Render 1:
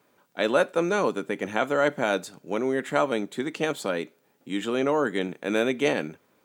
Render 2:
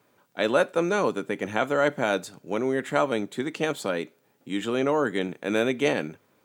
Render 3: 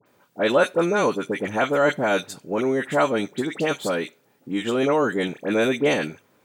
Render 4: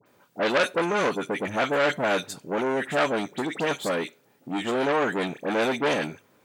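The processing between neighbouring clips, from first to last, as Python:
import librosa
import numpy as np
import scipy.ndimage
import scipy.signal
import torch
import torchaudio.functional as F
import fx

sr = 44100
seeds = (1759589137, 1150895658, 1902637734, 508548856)

y1 = fx.peak_eq(x, sr, hz=110.0, db=7.5, octaves=0.43)
y2 = fx.dispersion(y1, sr, late='highs', ms=61.0, hz=1800.0)
y2 = y2 * librosa.db_to_amplitude(3.5)
y3 = fx.transformer_sat(y2, sr, knee_hz=2400.0)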